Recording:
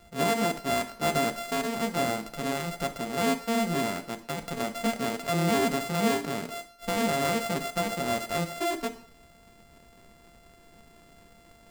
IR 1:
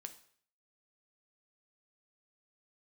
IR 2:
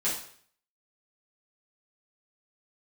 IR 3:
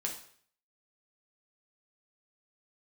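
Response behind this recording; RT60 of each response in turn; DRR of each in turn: 1; 0.55 s, 0.55 s, 0.55 s; 7.5 dB, -9.5 dB, 0.0 dB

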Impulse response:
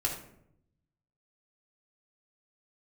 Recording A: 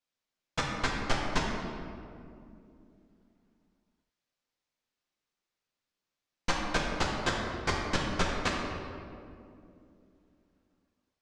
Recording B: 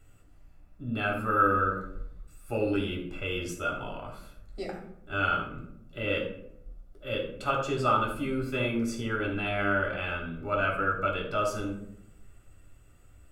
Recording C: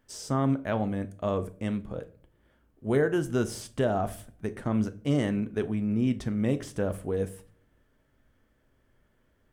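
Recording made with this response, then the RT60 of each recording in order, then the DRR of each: B; 2.6 s, 0.75 s, no single decay rate; -3.5 dB, -2.5 dB, 10.0 dB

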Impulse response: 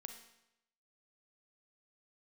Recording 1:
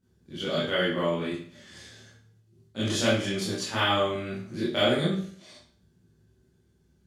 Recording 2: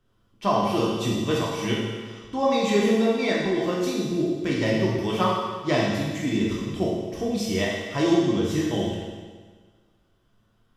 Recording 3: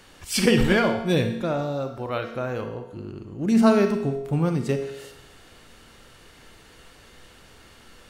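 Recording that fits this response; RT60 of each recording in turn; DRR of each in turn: 3; 0.50 s, 1.5 s, 0.85 s; -10.5 dB, -4.5 dB, 5.5 dB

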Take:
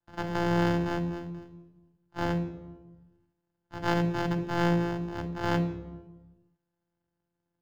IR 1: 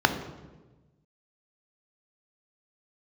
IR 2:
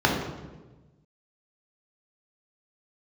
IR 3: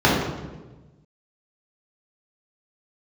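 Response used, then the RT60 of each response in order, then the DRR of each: 1; 1.2 s, 1.2 s, 1.2 s; 7.0 dB, -1.5 dB, -6.5 dB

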